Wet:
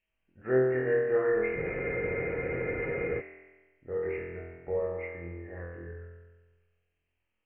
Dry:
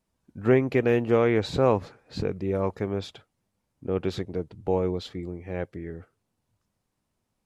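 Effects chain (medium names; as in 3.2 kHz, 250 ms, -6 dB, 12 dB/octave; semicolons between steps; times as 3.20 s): knee-point frequency compression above 1.7 kHz 4:1; graphic EQ 125/250/1000/2000 Hz -10/-10/-8/+3 dB; flutter echo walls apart 4 m, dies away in 1.3 s; spectral freeze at 1.58 s, 1.62 s; trim -7.5 dB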